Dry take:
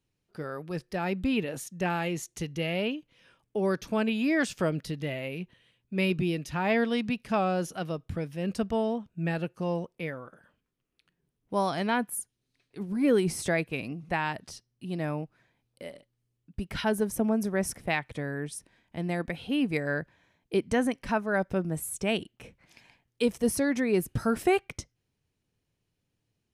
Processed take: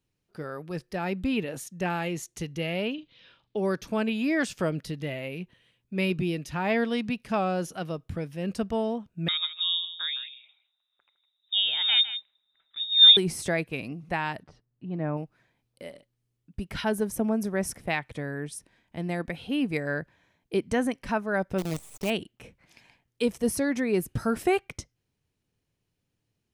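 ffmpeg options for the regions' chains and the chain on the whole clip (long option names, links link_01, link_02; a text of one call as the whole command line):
ffmpeg -i in.wav -filter_complex "[0:a]asettb=1/sr,asplit=3[link_01][link_02][link_03];[link_01]atrim=end=2.944[link_04];[link_02]atrim=start=2.94:end=3.57,asetpts=PTS-STARTPTS,afade=type=in:duration=0.004:curve=qsin,afade=type=out:start_time=0.626:duration=0.004:curve=qsin,lowpass=frequency=3900:width_type=q:width=4,asplit=2[link_05][link_06];[link_06]adelay=42,volume=-10dB[link_07];[link_05][link_07]amix=inputs=2:normalize=0,atrim=end_sample=27783[link_08];[link_03]atrim=start=3.566[link_09];[link_04][link_08]acrossfade=duration=0.004:curve1=hsin:curve2=qsin[link_10];[link_10][link_09]acrossfade=duration=0.004:curve1=qsin:curve2=hsin,asettb=1/sr,asplit=3[link_11][link_12][link_13];[link_11]atrim=end=9.284[link_14];[link_12]atrim=start=9.28:end=13.17,asetpts=PTS-STARTPTS,afade=type=in:duration=0.004:curve=qsin,afade=type=out:start_time=3.886:duration=0.004:curve=qsin,equalizer=frequency=270:width=3:gain=13,aecho=1:1:159:0.237,atrim=end_sample=171549,lowpass=frequency=3300:width_type=q:width=0.5098,lowpass=frequency=3300:width_type=q:width=0.6013,lowpass=frequency=3300:width_type=q:width=0.9,lowpass=frequency=3300:width_type=q:width=2.563,afreqshift=-3900[link_15];[link_13]atrim=start=13.166[link_16];[link_14][link_15]acrossfade=duration=0.004:curve1=hsin:curve2=qsin[link_17];[link_17][link_16]acrossfade=duration=0.004:curve1=qsin:curve2=hsin,asettb=1/sr,asplit=3[link_18][link_19][link_20];[link_18]atrim=end=14.434[link_21];[link_19]atrim=start=14.43:end=15.17,asetpts=PTS-STARTPTS,afade=type=in:duration=0.004:curve=qsin,afade=type=out:start_time=0.736:duration=0.004:curve=qsin,lowpass=1500,aecho=1:1:6.7:0.3,atrim=end_sample=32634[link_22];[link_20]atrim=start=15.166[link_23];[link_21][link_22]acrossfade=duration=0.004:curve1=hsin:curve2=qsin[link_24];[link_24][link_23]acrossfade=duration=0.004:curve1=qsin:curve2=hsin,asettb=1/sr,asplit=3[link_25][link_26][link_27];[link_25]atrim=end=21.584[link_28];[link_26]atrim=start=21.58:end=22.1,asetpts=PTS-STARTPTS,afade=type=in:duration=0.004:curve=qsin,afade=type=out:start_time=0.516:duration=0.004:curve=qsin,lowpass=frequency=8100:width=0.5412,lowpass=frequency=8100:width=1.3066,acrusher=bits=6:dc=4:mix=0:aa=0.000001,equalizer=frequency=1600:width_type=o:width=0.65:gain=-7.5[link_29];[link_27]atrim=start=22.096[link_30];[link_28][link_29]acrossfade=duration=0.004:curve1=hsin:curve2=qsin[link_31];[link_31][link_30]acrossfade=duration=0.004:curve1=qsin:curve2=hsin" out.wav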